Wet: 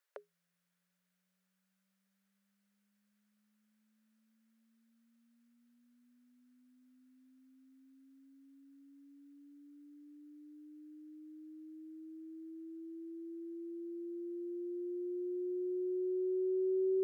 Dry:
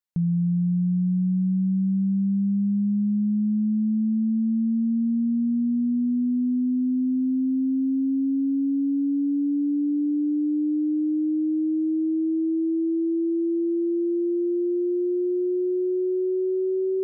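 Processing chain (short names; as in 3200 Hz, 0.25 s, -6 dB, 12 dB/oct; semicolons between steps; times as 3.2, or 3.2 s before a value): rippled Chebyshev high-pass 400 Hz, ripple 9 dB; gain +12.5 dB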